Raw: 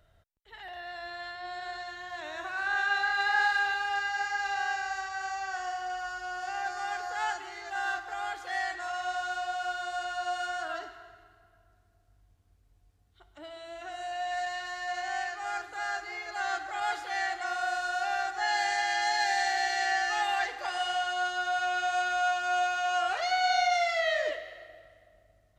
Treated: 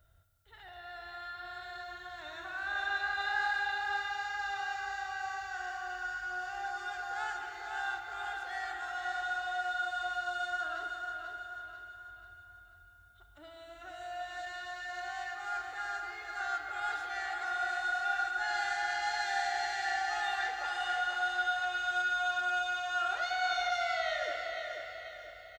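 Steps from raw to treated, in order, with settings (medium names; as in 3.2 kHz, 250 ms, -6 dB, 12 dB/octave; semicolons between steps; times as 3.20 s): peaking EQ 62 Hz +10.5 dB 1.8 oct; small resonant body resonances 1.4/3.6 kHz, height 11 dB, ringing for 30 ms; added noise blue -72 dBFS; feedback delay 489 ms, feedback 44%, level -6.5 dB; spring tank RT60 3.8 s, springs 30/35 ms, chirp 45 ms, DRR 5 dB; trim -8.5 dB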